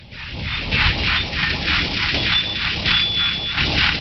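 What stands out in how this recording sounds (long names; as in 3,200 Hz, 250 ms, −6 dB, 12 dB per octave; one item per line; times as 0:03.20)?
phaser sweep stages 2, 3.3 Hz, lowest notch 490–1,500 Hz
tremolo saw down 1.4 Hz, depth 50%
Opus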